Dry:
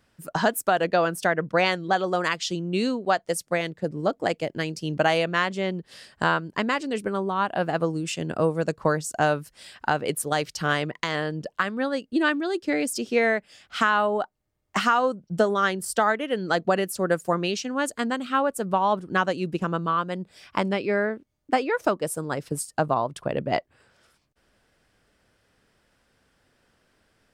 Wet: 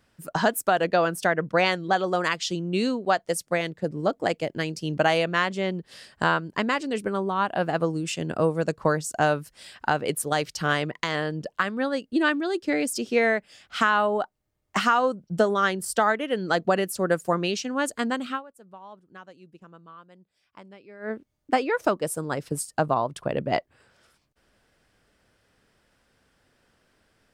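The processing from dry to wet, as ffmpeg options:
-filter_complex "[0:a]asplit=3[a][b][c];[a]atrim=end=18.44,asetpts=PTS-STARTPTS,afade=t=out:st=18.31:d=0.13:c=qua:silence=0.0749894[d];[b]atrim=start=18.44:end=20.98,asetpts=PTS-STARTPTS,volume=-22.5dB[e];[c]atrim=start=20.98,asetpts=PTS-STARTPTS,afade=t=in:d=0.13:c=qua:silence=0.0749894[f];[d][e][f]concat=n=3:v=0:a=1"

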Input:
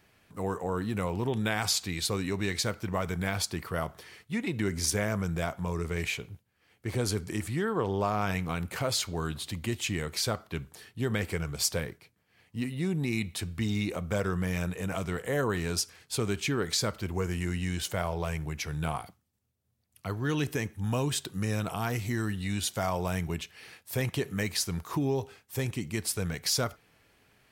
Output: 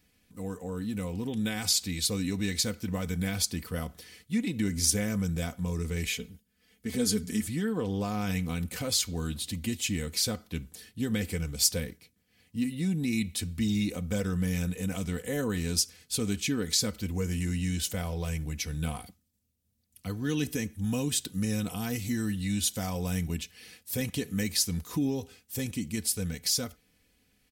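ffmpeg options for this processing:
-filter_complex "[0:a]asettb=1/sr,asplit=3[a][b][c];[a]atrim=end=6.064[d];[b]atrim=start=6.06:end=7.45,asetpts=PTS-STARTPTS,afade=t=in:d=0.004:c=qsin,afade=t=out:st=1.386:d=0.004:c=qsin,aecho=1:1:4.6:0.65,atrim=end_sample=61299[e];[c]atrim=start=7.446[f];[d][e]acrossfade=d=0.004:c1=hsin:c2=qsin[g];[g][f]acrossfade=d=0.004:c1=qsin:c2=hsin,dynaudnorm=f=320:g=9:m=4dB,equalizer=f=1k:t=o:w=2.5:g=-14.5,aecho=1:1:4:0.6"

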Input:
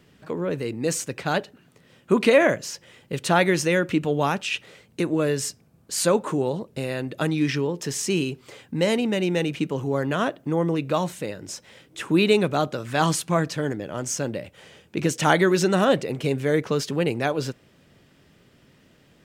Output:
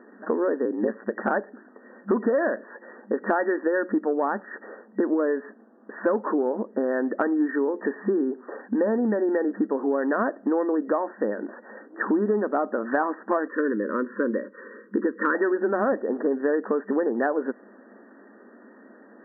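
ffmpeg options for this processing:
-filter_complex "[0:a]asettb=1/sr,asplit=3[a][b][c];[a]atrim=end=0.654[d];[b]atrim=start=0.65:end=1.32,asetpts=PTS-STARTPTS,afade=t=in:d=0.004:c=qsin,afade=t=out:st=0.666:d=0.004:c=qsin,aeval=exprs='val(0)*sin(2*PI*56*n/s)':c=same[e];[c]atrim=start=1.316[f];[d][e]acrossfade=d=0.004:c1=hsin:c2=qsin[g];[g][f]acrossfade=d=0.004:c1=qsin:c2=hsin,asettb=1/sr,asplit=3[h][i][j];[h]atrim=end=13.474[k];[i]atrim=start=13.47:end=15.35,asetpts=PTS-STARTPTS,afade=t=in:d=0.004:c=qsin,afade=t=out:st=1.876:d=0.004:c=qsin,asuperstop=centerf=740:order=8:qfactor=1.7[l];[j]atrim=start=15.346[m];[k][l]acrossfade=d=0.004:c1=hsin:c2=qsin[n];[n][m]acrossfade=d=0.004:c1=qsin:c2=hsin,acontrast=79,afftfilt=real='re*between(b*sr/4096,200,1900)':imag='im*between(b*sr/4096,200,1900)':win_size=4096:overlap=0.75,acompressor=threshold=-24dB:ratio=6,volume=3dB"

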